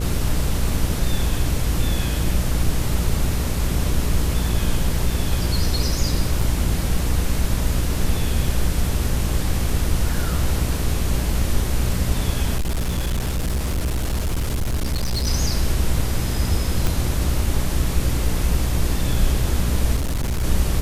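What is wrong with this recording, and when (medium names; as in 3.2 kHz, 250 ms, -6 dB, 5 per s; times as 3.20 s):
buzz 60 Hz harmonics 10 -24 dBFS
6.41 s: dropout 3.1 ms
12.56–15.28 s: clipped -18.5 dBFS
16.87 s: pop
19.96–20.44 s: clipped -19 dBFS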